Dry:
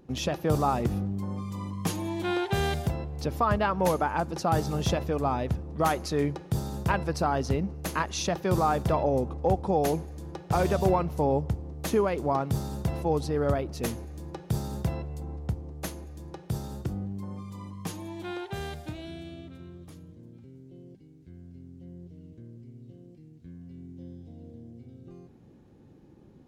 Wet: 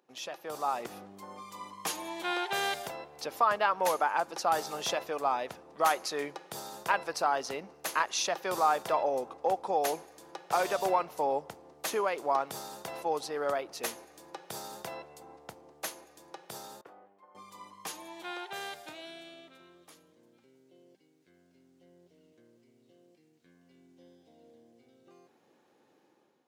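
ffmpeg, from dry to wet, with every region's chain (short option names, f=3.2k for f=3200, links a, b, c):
-filter_complex "[0:a]asettb=1/sr,asplit=3[a][b][c];[a]atrim=end=16.814[d];[b]atrim=start=16.81:end=17.35,asetpts=PTS-STARTPTS,afade=t=in:d=0.004:c=qsin,afade=t=out:st=0.536:d=0.004:c=qsin,agate=range=-33dB:threshold=-31dB:ratio=3:release=100:detection=peak,acrossover=split=370 2500:gain=0.126 1 0.0708[e][f][g];[e][f][g]amix=inputs=3:normalize=0,acompressor=mode=upward:threshold=-56dB:ratio=2.5:attack=3.2:release=140:knee=2.83:detection=peak[h];[c]atrim=start=17.346[i];[d][h]acrossfade=d=0.004:c1=hsin:c2=qsin[j];[j][i]acrossfade=d=0.004:c1=qsin:c2=hsin,highpass=660,dynaudnorm=f=510:g=3:m=9dB,volume=-7.5dB"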